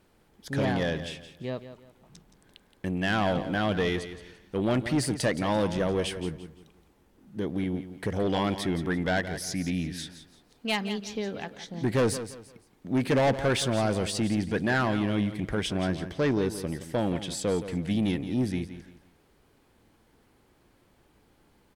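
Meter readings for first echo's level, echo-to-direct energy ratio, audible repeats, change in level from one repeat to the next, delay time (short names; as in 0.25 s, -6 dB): -12.0 dB, -11.5 dB, 3, -10.0 dB, 0.171 s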